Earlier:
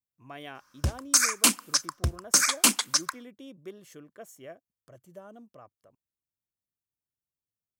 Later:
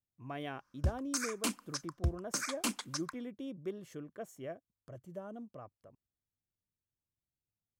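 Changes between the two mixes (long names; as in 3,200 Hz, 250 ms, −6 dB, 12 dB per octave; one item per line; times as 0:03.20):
background −11.0 dB
master: add spectral tilt −2 dB per octave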